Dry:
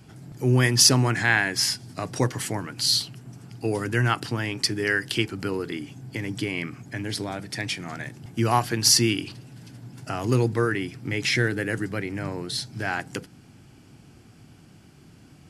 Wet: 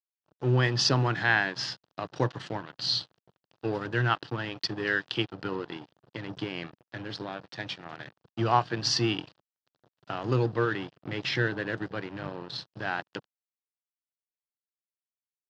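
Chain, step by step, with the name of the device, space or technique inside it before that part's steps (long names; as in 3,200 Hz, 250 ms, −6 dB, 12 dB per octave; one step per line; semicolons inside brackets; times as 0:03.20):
blown loudspeaker (dead-zone distortion −35.5 dBFS; loudspeaker in its box 120–4,200 Hz, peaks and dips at 240 Hz −9 dB, 410 Hz −3 dB, 2,200 Hz −10 dB)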